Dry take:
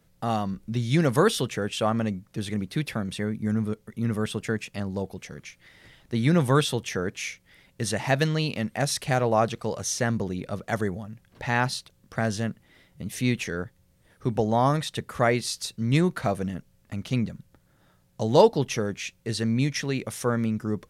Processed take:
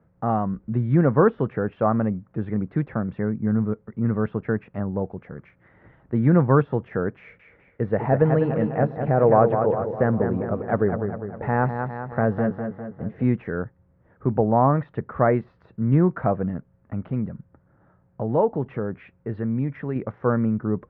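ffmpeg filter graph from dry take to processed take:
-filter_complex "[0:a]asettb=1/sr,asplit=3[a][b][c];[a]atrim=end=7.194[d];[b]atrim=start=7.19:end=13.24,asetpts=PTS-STARTPTS,afade=t=in:d=0.004:c=qsin,afade=t=out:st=6.046:d=0.004:c=qsin,agate=range=-33dB:threshold=-54dB:ratio=3:release=100:detection=peak,equalizer=f=470:w=3:g=6,asplit=2[e][f];[f]adelay=202,lowpass=f=3.4k:p=1,volume=-7dB,asplit=2[g][h];[h]adelay=202,lowpass=f=3.4k:p=1,volume=0.55,asplit=2[i][j];[j]adelay=202,lowpass=f=3.4k:p=1,volume=0.55,asplit=2[k][l];[l]adelay=202,lowpass=f=3.4k:p=1,volume=0.55,asplit=2[m][n];[n]adelay=202,lowpass=f=3.4k:p=1,volume=0.55,asplit=2[o][p];[p]adelay=202,lowpass=f=3.4k:p=1,volume=0.55,asplit=2[q][r];[r]adelay=202,lowpass=f=3.4k:p=1,volume=0.55[s];[e][g][i][k][m][o][q][s]amix=inputs=8:normalize=0,atrim=end_sample=266805[t];[c]atrim=start=13.236[u];[d][t]acrossfade=d=0.004:c1=hsin:c2=qsin[v];[v][u]acrossfade=d=0.004:c1=qsin:c2=hsin,asettb=1/sr,asplit=3[w][x][y];[w]atrim=end=17.004[z];[x]atrim=start=17:end=19.96,asetpts=PTS-STARTPTS,afade=t=in:d=0.004:c=qsin,afade=t=out:st=2.956:d=0.004:c=qsin,lowpass=4.3k,acompressor=threshold=-32dB:ratio=1.5:attack=3.2:release=140:knee=1:detection=peak[aa];[y]atrim=start=19.956[ab];[z][aa]acrossfade=d=0.004:c1=hsin:c2=qsin[ac];[ac][ab]acrossfade=d=0.004:c1=qsin:c2=hsin,highpass=49,deesser=0.85,lowpass=f=1.5k:w=0.5412,lowpass=f=1.5k:w=1.3066,volume=4dB"

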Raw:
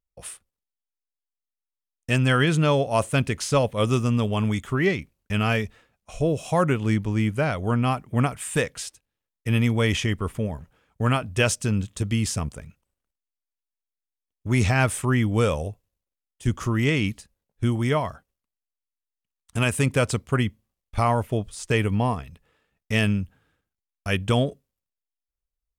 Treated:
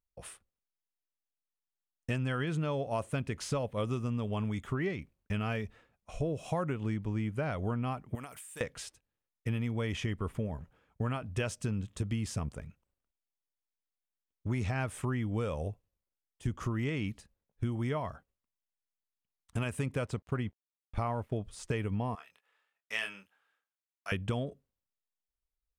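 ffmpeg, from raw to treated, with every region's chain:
-filter_complex "[0:a]asettb=1/sr,asplit=3[a][b][c];[a]atrim=end=8.154[d];[b]atrim=start=8.15:end=8.61,asetpts=PTS-STARTPTS,afade=t=in:d=0.004:c=qsin,afade=t=out:st=0.456:d=0.004:c=qsin,aemphasis=mode=production:type=riaa,acompressor=threshold=-34dB:ratio=20:attack=3.2:release=140:knee=1:detection=peak[e];[c]atrim=start=8.606[f];[d][e]acrossfade=d=0.004:c1=hsin:c2=qsin[g];[g][f]acrossfade=d=0.004:c1=qsin:c2=hsin,asettb=1/sr,asplit=3[h][i][j];[h]atrim=end=20.064[k];[i]atrim=start=20.06:end=21.36,asetpts=PTS-STARTPTS,afade=t=in:d=0.004:c=qsin,afade=t=out:st=1.296:d=0.004:c=qsin,aeval=exprs='sgn(val(0))*max(abs(val(0))-0.00299,0)':c=same,highshelf=f=4.3k:g=-5.5[l];[j]atrim=start=21.356[m];[k][l]acrossfade=d=0.004:c1=hsin:c2=qsin[n];[n][m]acrossfade=d=0.004:c1=qsin:c2=hsin,asettb=1/sr,asplit=3[o][p][q];[o]atrim=end=22.154[r];[p]atrim=start=22.15:end=24.12,asetpts=PTS-STARTPTS,afade=t=in:d=0.004:c=qsin,afade=t=out:st=1.966:d=0.004:c=qsin,highpass=1k,asplit=2[s][t];[t]adelay=26,volume=-5.5dB[u];[s][u]amix=inputs=2:normalize=0,atrim=end_sample=86877[v];[q]atrim=start=24.116[w];[r][v]acrossfade=d=0.004:c1=hsin:c2=qsin[x];[x][w]acrossfade=d=0.004:c1=qsin:c2=hsin,highshelf=f=3.2k:g=-8.5,acompressor=threshold=-26dB:ratio=6,volume=-3.5dB"

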